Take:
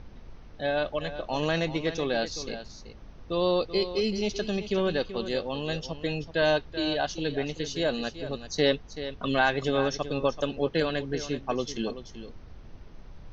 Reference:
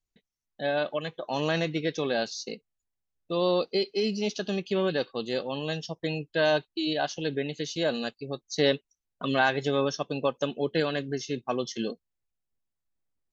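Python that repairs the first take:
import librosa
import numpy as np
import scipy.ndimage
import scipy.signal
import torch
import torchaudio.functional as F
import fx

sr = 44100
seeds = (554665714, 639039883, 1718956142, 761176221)

y = fx.noise_reduce(x, sr, print_start_s=2.69, print_end_s=3.19, reduce_db=30.0)
y = fx.fix_echo_inverse(y, sr, delay_ms=382, level_db=-12.0)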